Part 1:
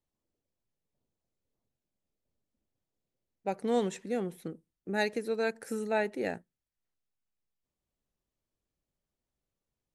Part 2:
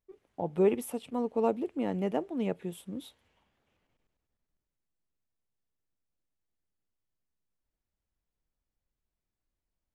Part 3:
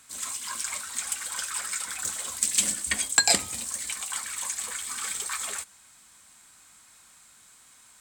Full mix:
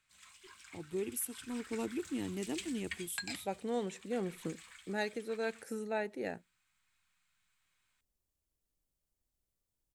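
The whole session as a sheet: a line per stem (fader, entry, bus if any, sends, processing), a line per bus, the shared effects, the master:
-4.0 dB, 0.00 s, no send, dry
-1.0 dB, 0.35 s, no send, EQ curve 100 Hz 0 dB, 180 Hz -13 dB, 330 Hz -5 dB, 560 Hz -23 dB, 8200 Hz +8 dB
-18.0 dB, 0.00 s, no send, EQ curve 180 Hz 0 dB, 270 Hz -17 dB, 2500 Hz +3 dB, 8300 Hz -13 dB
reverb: off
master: vocal rider within 5 dB 0.5 s

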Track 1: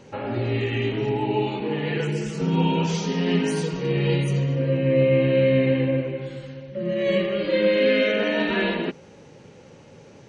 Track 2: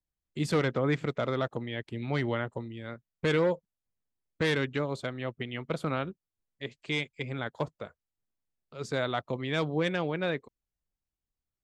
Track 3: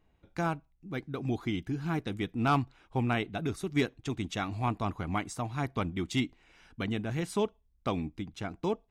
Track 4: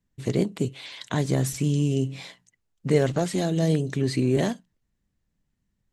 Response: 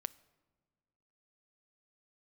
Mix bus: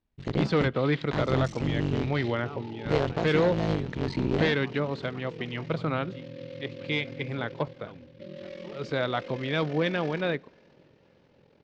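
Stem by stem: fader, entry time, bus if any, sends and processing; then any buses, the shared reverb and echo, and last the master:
-11.5 dB, 1.45 s, no send, echo send -20.5 dB, limiter -20 dBFS, peak gain reduction 11 dB; ring modulator 21 Hz; noise-modulated delay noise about 2800 Hz, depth 0.05 ms
-1.0 dB, 0.00 s, send -5.5 dB, no echo send, dry
-17.5 dB, 0.00 s, no send, no echo send, dry
-3.5 dB, 0.00 s, no send, no echo send, cycle switcher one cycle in 3, muted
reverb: on, pre-delay 6 ms
echo: feedback echo 0.529 s, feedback 42%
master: LPF 4800 Hz 24 dB/oct

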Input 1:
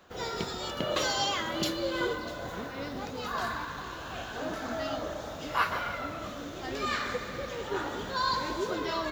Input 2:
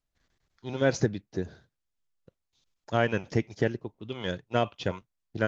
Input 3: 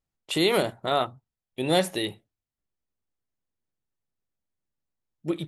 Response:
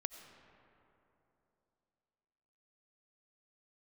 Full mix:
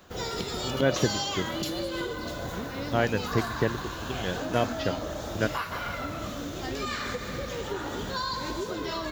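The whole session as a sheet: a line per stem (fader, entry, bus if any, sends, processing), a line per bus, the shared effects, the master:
+1.0 dB, 0.00 s, no send, low shelf 310 Hz +8 dB; compressor 10:1, threshold -30 dBFS, peak gain reduction 10.5 dB; high shelf 4100 Hz +8.5 dB
0.0 dB, 0.00 s, no send, dry
-18.5 dB, 0.00 s, no send, dry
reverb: off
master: dry

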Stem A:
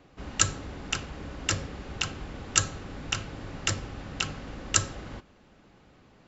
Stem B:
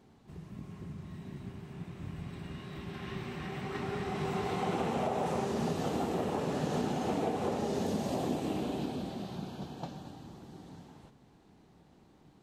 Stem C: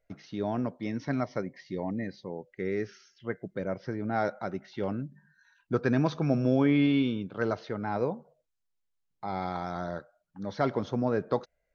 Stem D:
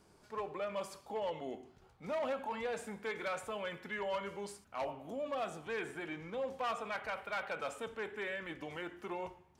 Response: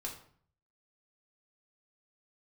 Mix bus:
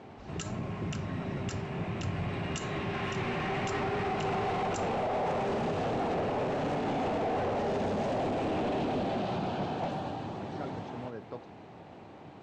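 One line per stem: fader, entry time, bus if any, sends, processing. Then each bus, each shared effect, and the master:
-12.0 dB, 0.00 s, no send, dry
+1.0 dB, 0.00 s, no send, fifteen-band EQ 100 Hz +11 dB, 630 Hz +5 dB, 2500 Hz +6 dB; overdrive pedal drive 23 dB, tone 1000 Hz, clips at -22.5 dBFS; steep low-pass 8500 Hz 36 dB/oct
-14.5 dB, 0.00 s, no send, dry
-20.0 dB, 2.20 s, no send, dry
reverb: off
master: limiter -24.5 dBFS, peak gain reduction 10 dB

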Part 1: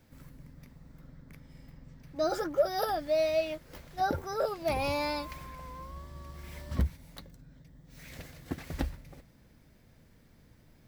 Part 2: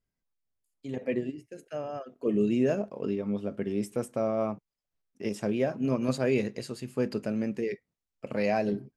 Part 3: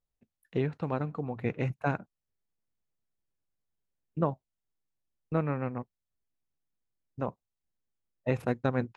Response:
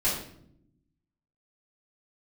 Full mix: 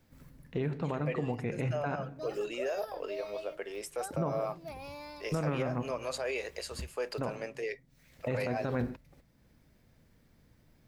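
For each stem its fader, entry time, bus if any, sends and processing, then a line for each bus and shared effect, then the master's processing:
-4.0 dB, 0.00 s, no send, auto duck -10 dB, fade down 0.45 s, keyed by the second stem
+2.5 dB, 0.00 s, no send, HPF 520 Hz 24 dB/oct; limiter -28.5 dBFS, peak gain reduction 9.5 dB
+1.0 dB, 0.00 s, send -21.5 dB, dry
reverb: on, RT60 0.70 s, pre-delay 3 ms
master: limiter -22.5 dBFS, peak gain reduction 11 dB

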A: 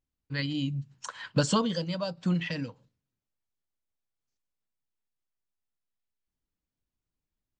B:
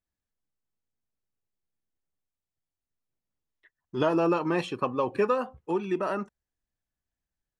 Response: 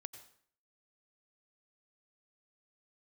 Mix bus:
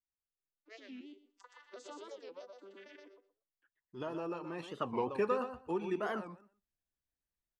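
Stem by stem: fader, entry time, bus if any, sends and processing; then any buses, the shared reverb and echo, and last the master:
-9.5 dB, 0.35 s, no send, echo send -4 dB, arpeggiated vocoder major triad, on G3, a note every 0.108 s; steep high-pass 340 Hz 48 dB/oct; limiter -31 dBFS, peak gain reduction 11 dB; auto duck -9 dB, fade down 1.75 s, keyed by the second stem
4.57 s -16 dB -> 4.89 s -7.5 dB, 0.00 s, no send, echo send -9.5 dB, dry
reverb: off
echo: feedback echo 0.122 s, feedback 16%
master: record warp 45 rpm, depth 250 cents

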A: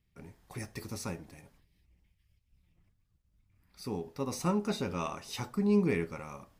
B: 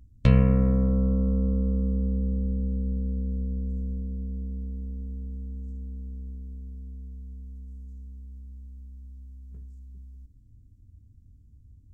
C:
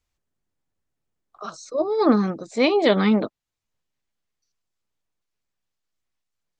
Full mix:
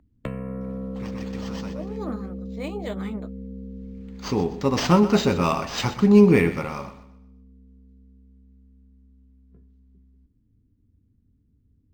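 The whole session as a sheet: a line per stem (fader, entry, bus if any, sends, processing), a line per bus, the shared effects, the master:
+2.0 dB, 0.45 s, no send, echo send -14 dB, high shelf 9000 Hz +11 dB; AGC gain up to 11 dB; auto duck -22 dB, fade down 1.90 s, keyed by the third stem
+2.5 dB, 0.00 s, no send, no echo send, three-band isolator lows -15 dB, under 180 Hz, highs -16 dB, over 2500 Hz; compressor 4:1, threshold -32 dBFS, peak gain reduction 11 dB
-11.0 dB, 0.00 s, no send, no echo send, flange 1.7 Hz, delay 2.4 ms, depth 8.5 ms, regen -47%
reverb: off
echo: feedback echo 0.124 s, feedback 35%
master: decimation joined by straight lines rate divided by 4×

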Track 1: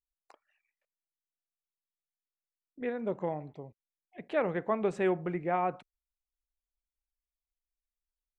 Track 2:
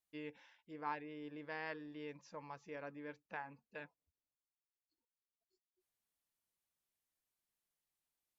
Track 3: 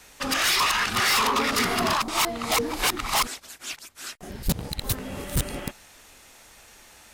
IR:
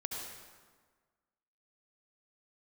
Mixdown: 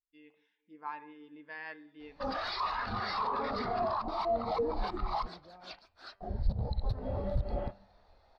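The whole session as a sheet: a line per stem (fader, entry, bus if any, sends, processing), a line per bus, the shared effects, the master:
-18.0 dB, 0.00 s, no bus, no send, fast leveller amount 50%
-0.5 dB, 0.00 s, bus A, send -4 dB, ten-band EQ 125 Hz -9 dB, 500 Hz -6 dB, 4000 Hz +6 dB
0.0 dB, 2.00 s, bus A, send -16 dB, EQ curve 110 Hz 0 dB, 180 Hz -14 dB, 690 Hz +2 dB, 2900 Hz -14 dB, 4400 Hz -4 dB, 7100 Hz -27 dB; compressor, threshold -29 dBFS, peak gain reduction 8.5 dB
bus A: 0.0 dB, AGC gain up to 8 dB; limiter -22.5 dBFS, peak gain reduction 8.5 dB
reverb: on, RT60 1.5 s, pre-delay 63 ms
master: bell 200 Hz +13 dB 0.21 oct; de-hum 98.32 Hz, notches 33; spectral expander 1.5:1

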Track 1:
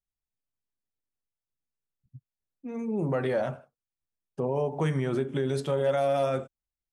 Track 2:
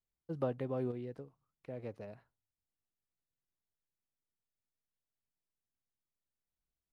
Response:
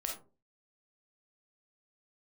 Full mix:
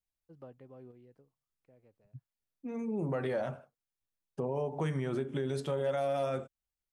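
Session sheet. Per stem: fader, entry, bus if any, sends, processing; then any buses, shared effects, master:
-1.5 dB, 0.00 s, no send, dry
-15.5 dB, 0.00 s, no send, notch 3700 Hz; auto duck -10 dB, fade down 0.65 s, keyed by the first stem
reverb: off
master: compressor 1.5:1, threshold -37 dBFS, peak gain reduction 5 dB

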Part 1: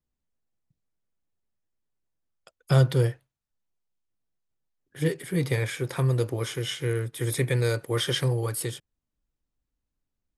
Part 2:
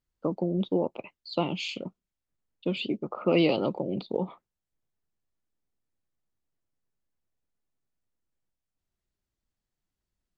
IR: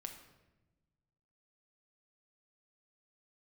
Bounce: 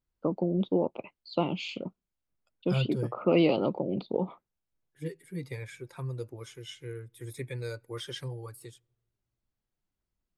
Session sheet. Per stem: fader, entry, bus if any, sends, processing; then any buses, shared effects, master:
-9.5 dB, 0.00 s, send -23 dB, per-bin expansion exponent 1.5; de-esser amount 65%
0.0 dB, 0.00 s, no send, high shelf 3500 Hz -8.5 dB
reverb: on, RT60 1.1 s, pre-delay 6 ms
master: notch 1800 Hz, Q 18

